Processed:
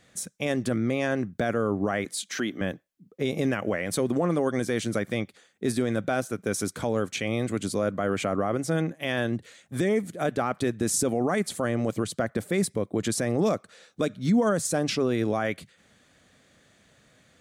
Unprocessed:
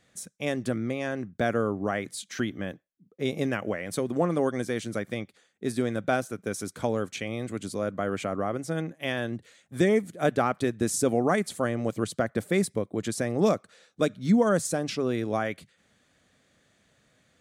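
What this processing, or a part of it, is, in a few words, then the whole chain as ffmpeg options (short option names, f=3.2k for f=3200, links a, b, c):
stacked limiters: -filter_complex "[0:a]alimiter=limit=-16.5dB:level=0:latency=1:release=408,alimiter=limit=-21dB:level=0:latency=1:release=20,asettb=1/sr,asplit=3[a][b][c];[a]atrim=end=2.054[d];[b]atrim=start=2.05:end=2.61,asetpts=PTS-STARTPTS,afade=t=in:d=0.004:c=qsin,afade=t=out:st=0.556:d=0.004:c=qsin,highpass=230[e];[c]atrim=start=2.606[f];[d][e]acrossfade=d=0.004:c1=hsin:c2=qsin[g];[g][f]acrossfade=d=0.004:c1=qsin:c2=hsin,volume=5.5dB"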